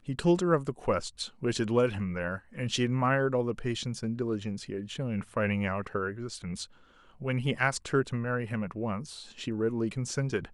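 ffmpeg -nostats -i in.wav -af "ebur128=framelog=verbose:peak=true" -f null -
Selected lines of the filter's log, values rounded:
Integrated loudness:
  I:         -30.9 LUFS
  Threshold: -41.1 LUFS
Loudness range:
  LRA:         4.2 LU
  Threshold: -51.4 LUFS
  LRA low:   -33.6 LUFS
  LRA high:  -29.4 LUFS
True peak:
  Peak:      -11.3 dBFS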